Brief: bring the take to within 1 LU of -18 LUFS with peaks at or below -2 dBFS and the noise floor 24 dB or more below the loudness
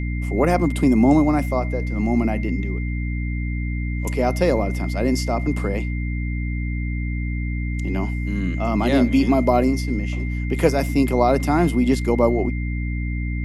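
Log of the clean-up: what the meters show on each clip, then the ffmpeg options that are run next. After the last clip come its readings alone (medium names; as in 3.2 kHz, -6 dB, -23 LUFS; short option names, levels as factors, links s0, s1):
hum 60 Hz; highest harmonic 300 Hz; hum level -22 dBFS; steady tone 2.1 kHz; tone level -35 dBFS; loudness -21.5 LUFS; peak level -3.5 dBFS; loudness target -18.0 LUFS
-> -af "bandreject=f=60:t=h:w=6,bandreject=f=120:t=h:w=6,bandreject=f=180:t=h:w=6,bandreject=f=240:t=h:w=6,bandreject=f=300:t=h:w=6"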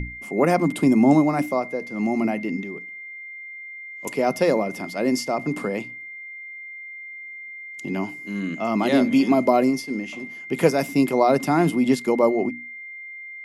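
hum not found; steady tone 2.1 kHz; tone level -35 dBFS
-> -af "bandreject=f=2100:w=30"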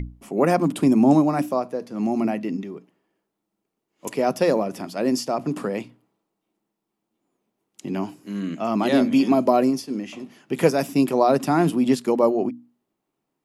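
steady tone not found; loudness -22.0 LUFS; peak level -3.5 dBFS; loudness target -18.0 LUFS
-> -af "volume=1.58,alimiter=limit=0.794:level=0:latency=1"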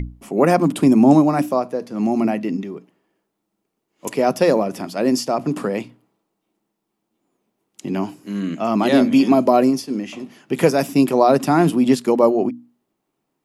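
loudness -18.0 LUFS; peak level -2.0 dBFS; noise floor -77 dBFS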